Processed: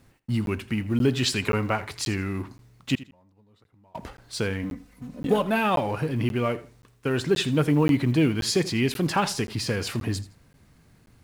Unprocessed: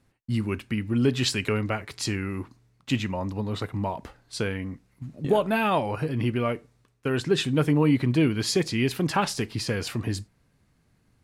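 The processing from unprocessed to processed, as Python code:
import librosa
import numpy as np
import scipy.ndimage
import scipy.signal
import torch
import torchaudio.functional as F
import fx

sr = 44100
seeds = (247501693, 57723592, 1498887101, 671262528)

y = fx.law_mismatch(x, sr, coded='mu')
y = fx.peak_eq(y, sr, hz=980.0, db=7.5, octaves=0.79, at=(1.41, 1.9))
y = fx.gate_flip(y, sr, shuts_db=-27.0, range_db=-31, at=(2.95, 3.95))
y = fx.comb(y, sr, ms=4.0, depth=0.68, at=(4.63, 5.42))
y = fx.echo_feedback(y, sr, ms=82, feedback_pct=25, wet_db=-17.5)
y = fx.buffer_crackle(y, sr, first_s=0.46, period_s=0.53, block=512, kind='zero')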